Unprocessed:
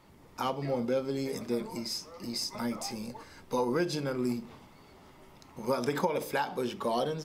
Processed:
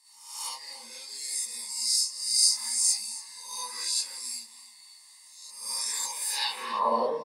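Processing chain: reverse spectral sustain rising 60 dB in 0.70 s; tilt EQ +3 dB/octave; comb 1.1 ms, depth 54%; band-pass sweep 7.5 kHz -> 490 Hz, 6.23–6.91 s; rippled EQ curve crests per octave 0.93, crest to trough 11 dB; on a send: delay 280 ms -16.5 dB; on the sum: gated-style reverb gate 90 ms rising, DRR -7.5 dB

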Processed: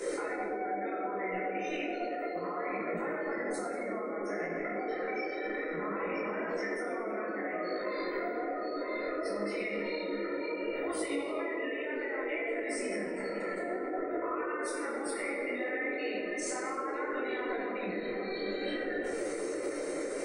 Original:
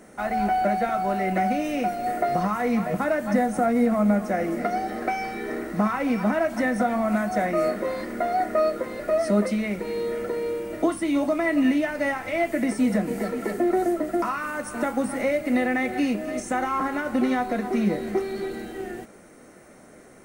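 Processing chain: in parallel at -6 dB: sample-rate reducer 14 kHz, jitter 0%; on the sum: graphic EQ 125/250/500/1000/2000/4000/8000 Hz -5/-5/-4/+7/+7/+8/+11 dB; compression 4:1, threshold -34 dBFS, peak gain reduction 19.5 dB; spectral gate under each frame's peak -20 dB strong; band noise 290–560 Hz -34 dBFS; reverberation RT60 2.7 s, pre-delay 6 ms, DRR -4 dB; peak limiter -21.5 dBFS, peak gain reduction 10 dB; treble shelf 3.4 kHz +9 dB; detune thickener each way 22 cents; trim -2.5 dB

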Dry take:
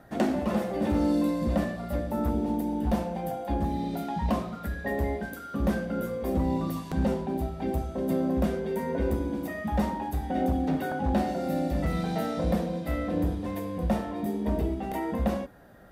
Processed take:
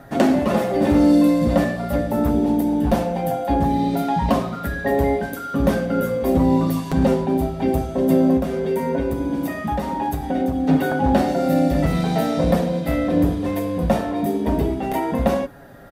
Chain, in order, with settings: 8.36–10.69 s: compression, threshold -28 dBFS, peak gain reduction 8 dB; comb 7.3 ms, depth 45%; trim +9 dB

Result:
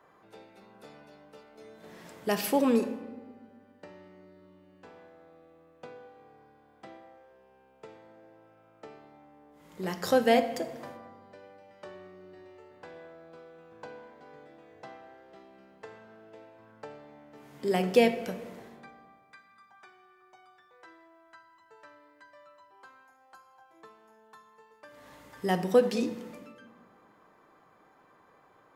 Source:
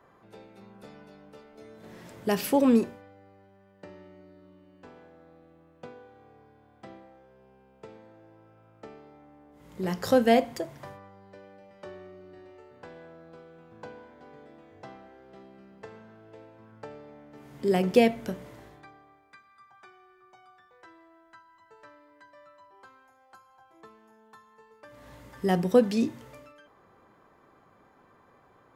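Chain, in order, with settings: bass shelf 260 Hz -8.5 dB; hum notches 60/120 Hz; simulated room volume 1200 m³, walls mixed, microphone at 0.52 m

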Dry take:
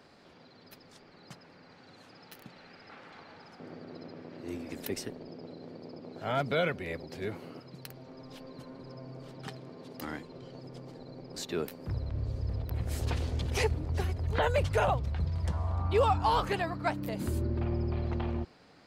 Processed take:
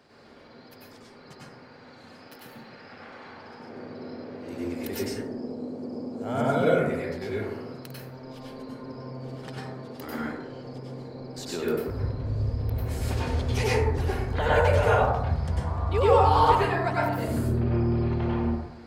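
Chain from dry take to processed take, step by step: 5.12–6.90 s: graphic EQ 250/2000/4000/8000 Hz +6/-7/-8/+11 dB; plate-style reverb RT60 0.88 s, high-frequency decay 0.35×, pre-delay 85 ms, DRR -7 dB; trim -1.5 dB

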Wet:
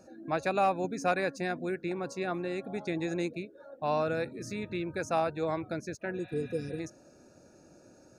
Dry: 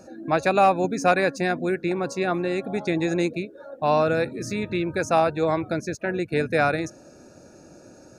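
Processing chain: spectral replace 6.20–6.77 s, 550–4500 Hz before; trim -9 dB

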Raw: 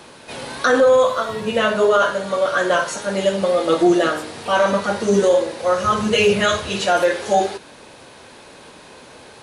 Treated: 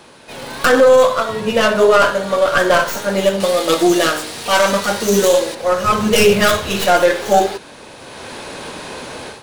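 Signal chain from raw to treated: tracing distortion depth 0.16 ms; 3.40–5.55 s: treble shelf 2.3 kHz +11 dB; level rider gain up to 13.5 dB; trim -1 dB

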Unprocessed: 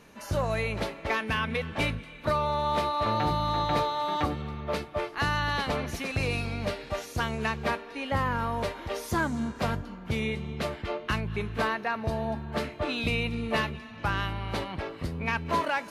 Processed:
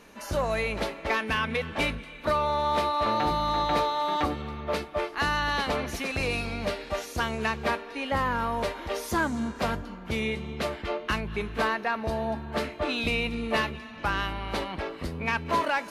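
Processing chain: peaking EQ 120 Hz -14 dB 0.59 oct; in parallel at -9 dB: saturation -26 dBFS, distortion -13 dB

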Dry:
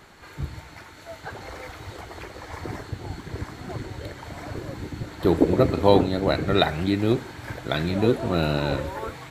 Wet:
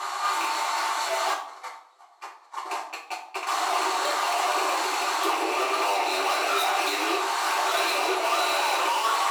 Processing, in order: rattle on loud lows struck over -28 dBFS, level -21 dBFS; compression 6:1, threshold -25 dBFS, peak gain reduction 14 dB; tilt EQ +4.5 dB/octave; flutter echo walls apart 10.5 m, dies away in 0.25 s; 1.33–3.47 s: gate -32 dBFS, range -40 dB; low-pass 8.4 kHz 12 dB/octave; high-order bell 920 Hz +15 dB 1.1 oct; overload inside the chain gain 33.5 dB; brick-wall FIR high-pass 290 Hz; reverberation RT60 0.55 s, pre-delay 3 ms, DRR -5.5 dB; trim +4.5 dB

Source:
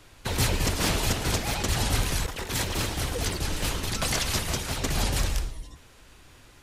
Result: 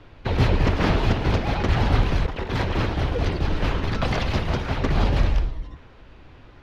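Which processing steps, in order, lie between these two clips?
in parallel at -7 dB: decimation with a swept rate 16×, swing 100% 1 Hz; on the sum: distance through air 290 m; trim +4 dB

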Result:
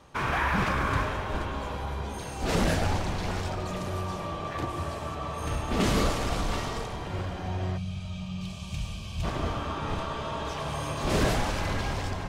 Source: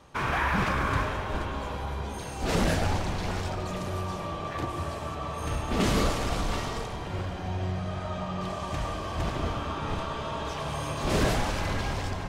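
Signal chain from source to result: time-frequency box 7.77–9.23 s, 230–2200 Hz -16 dB

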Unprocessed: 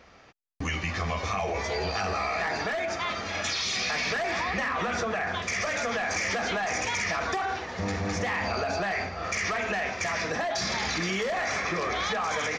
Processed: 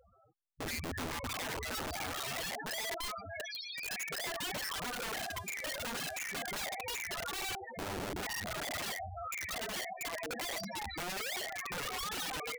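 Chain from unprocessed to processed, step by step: loudest bins only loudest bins 4; 4.86–6.18 s: mains buzz 400 Hz, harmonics 38, -57 dBFS -3 dB/octave; integer overflow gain 31.5 dB; trim -2.5 dB

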